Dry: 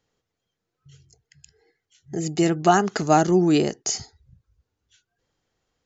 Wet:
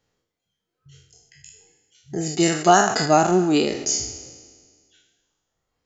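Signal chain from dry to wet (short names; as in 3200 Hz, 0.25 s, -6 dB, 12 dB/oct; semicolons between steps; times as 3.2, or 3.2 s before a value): spectral trails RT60 1.80 s; reverb removal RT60 1.1 s; 2.4–3.06 high shelf 3800 Hz +8 dB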